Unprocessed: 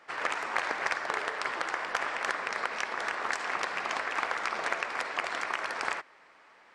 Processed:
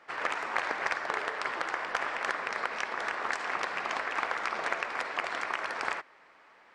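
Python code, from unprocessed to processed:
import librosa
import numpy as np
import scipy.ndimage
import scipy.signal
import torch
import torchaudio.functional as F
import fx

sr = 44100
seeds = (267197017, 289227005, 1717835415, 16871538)

y = fx.high_shelf(x, sr, hz=5700.0, db=-6.5)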